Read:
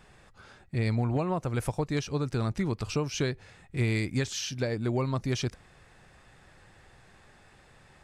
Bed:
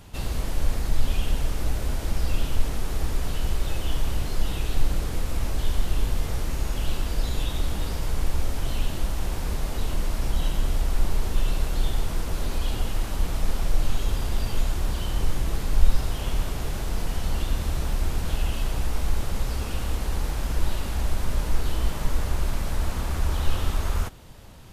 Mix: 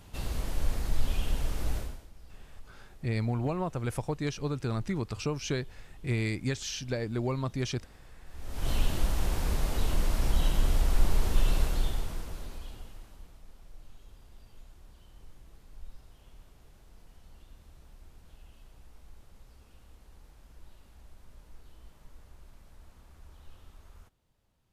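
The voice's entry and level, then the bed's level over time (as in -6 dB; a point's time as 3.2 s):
2.30 s, -2.5 dB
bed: 1.78 s -5.5 dB
2.1 s -27 dB
8.24 s -27 dB
8.69 s -1.5 dB
11.61 s -1.5 dB
13.43 s -28 dB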